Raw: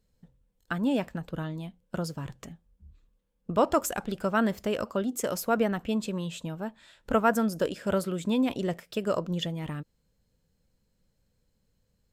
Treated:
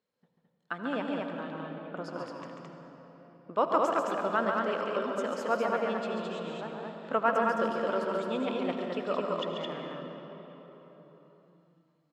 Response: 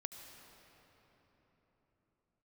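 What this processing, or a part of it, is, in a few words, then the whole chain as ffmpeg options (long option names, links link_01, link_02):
station announcement: -filter_complex "[0:a]asettb=1/sr,asplit=3[link_01][link_02][link_03];[link_01]atrim=end=1.554[link_04];[link_02]atrim=start=1.55:end=1.97,asetpts=PTS-STARTPTS,afade=type=in:duration=0.004:curve=qsin,afade=type=out:start_time=0.416:duration=0.004:curve=qsin,lowpass=2400[link_05];[link_03]atrim=start=1.966[link_06];[link_04][link_05]acrossfade=duration=0.004:curve1=hsin:curve2=qsin[link_07];[link_07][link_06]acrossfade=duration=0.004:curve1=qsin:curve2=hsin,highpass=330,lowpass=3700,equalizer=frequency=1100:width_type=o:width=0.54:gain=4.5,aecho=1:1:139.9|215.7:0.501|0.708[link_08];[1:a]atrim=start_sample=2205[link_09];[link_08][link_09]afir=irnorm=-1:irlink=0"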